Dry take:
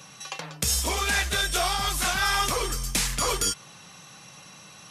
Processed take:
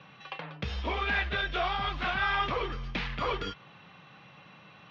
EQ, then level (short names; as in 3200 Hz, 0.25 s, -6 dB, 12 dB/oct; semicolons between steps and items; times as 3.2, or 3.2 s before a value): HPF 45 Hz; inverse Chebyshev low-pass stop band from 7700 Hz, stop band 50 dB; -3.0 dB